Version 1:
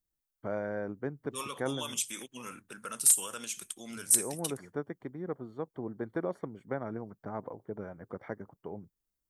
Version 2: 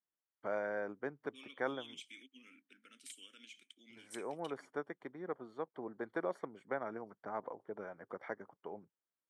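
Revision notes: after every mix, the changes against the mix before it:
second voice: add vowel filter i; master: add weighting filter A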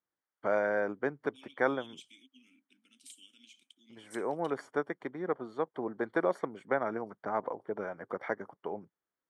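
first voice +8.5 dB; second voice: add band shelf 920 Hz -15 dB 2.6 oct

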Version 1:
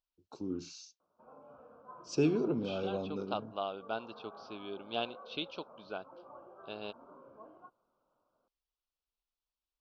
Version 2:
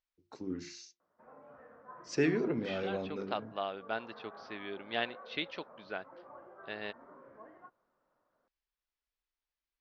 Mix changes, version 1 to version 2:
first voice: add notches 50/100/150/200/250/300/350 Hz; master: remove Butterworth band-stop 1900 Hz, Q 1.6

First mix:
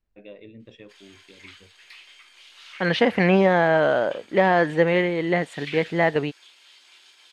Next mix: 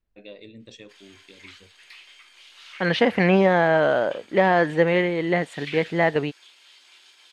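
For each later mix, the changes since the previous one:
first voice: remove polynomial smoothing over 25 samples; reverb: on, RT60 1.0 s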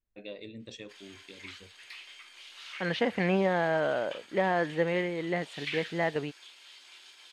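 second voice -9.0 dB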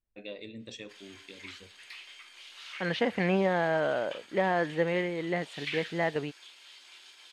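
first voice: send +8.0 dB

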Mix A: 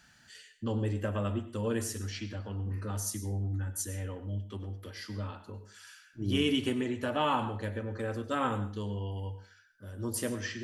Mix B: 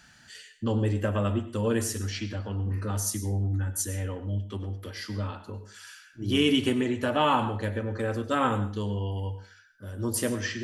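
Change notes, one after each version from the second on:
first voice +5.5 dB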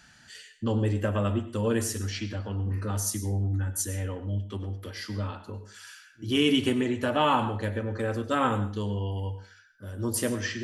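second voice -12.0 dB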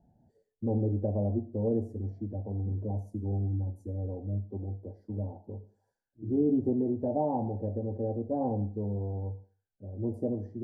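first voice: send -8.0 dB; master: add elliptic low-pass 780 Hz, stop band 40 dB

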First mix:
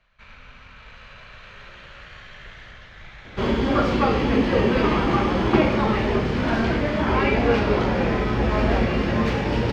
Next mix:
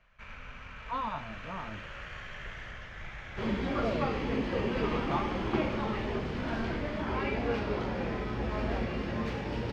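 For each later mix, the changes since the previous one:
speech: unmuted; first sound: add bell 4000 Hz -9 dB 0.47 oct; second sound -12.0 dB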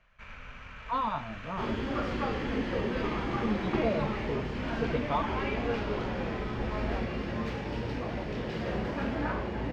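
speech +4.0 dB; second sound: entry -1.80 s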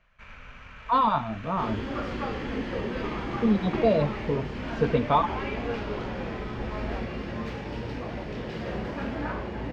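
speech +8.5 dB

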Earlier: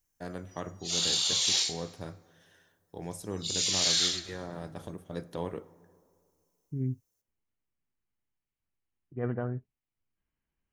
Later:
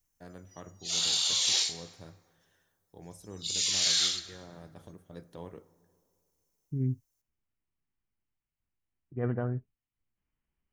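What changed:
first voice -9.5 dB; master: add low shelf 130 Hz +4.5 dB

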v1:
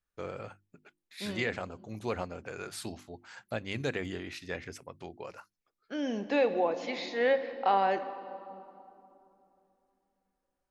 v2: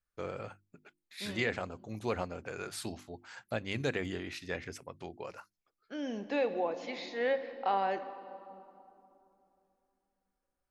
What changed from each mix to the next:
second voice -4.5 dB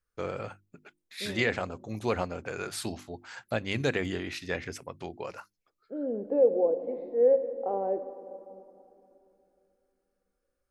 first voice +5.0 dB; second voice: add synth low-pass 490 Hz, resonance Q 3.8

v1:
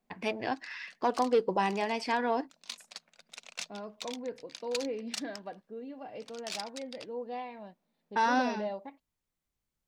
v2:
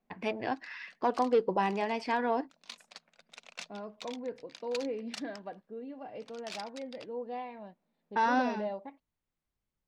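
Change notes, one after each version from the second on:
master: add high shelf 4800 Hz -11.5 dB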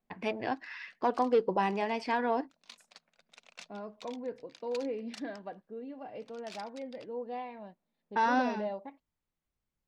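background -5.5 dB

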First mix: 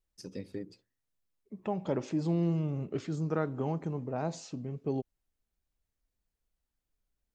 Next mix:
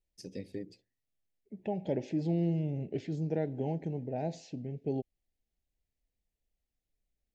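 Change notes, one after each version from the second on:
second voice: add air absorption 100 m; master: add Chebyshev band-stop 740–1900 Hz, order 2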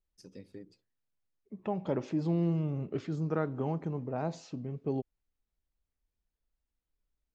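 first voice -8.0 dB; master: remove Chebyshev band-stop 740–1900 Hz, order 2

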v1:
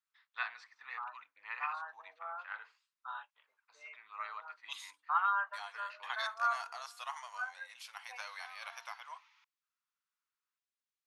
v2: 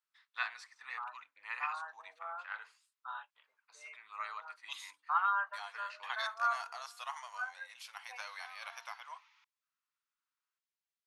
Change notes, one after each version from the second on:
first voice: remove air absorption 140 m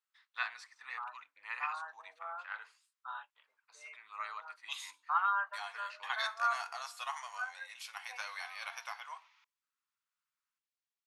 reverb: on, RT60 0.45 s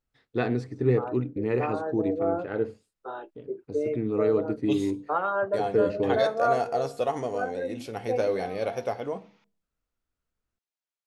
background: add HPF 290 Hz 12 dB/oct; master: remove elliptic high-pass 1000 Hz, stop band 60 dB

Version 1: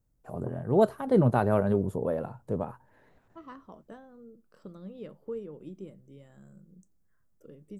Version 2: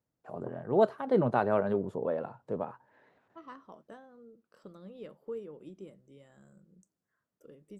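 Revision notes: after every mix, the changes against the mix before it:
first voice: add BPF 110–4500 Hz; master: add low shelf 220 Hz -11 dB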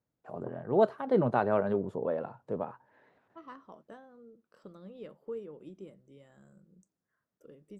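master: add high shelf 6100 Hz -4.5 dB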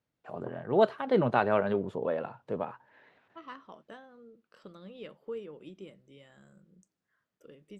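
master: add bell 2900 Hz +10.5 dB 1.8 oct

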